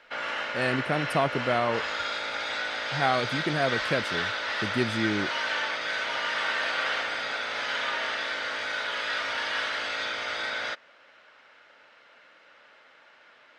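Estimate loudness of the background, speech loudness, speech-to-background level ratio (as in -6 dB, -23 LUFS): -29.5 LUFS, -29.0 LUFS, 0.5 dB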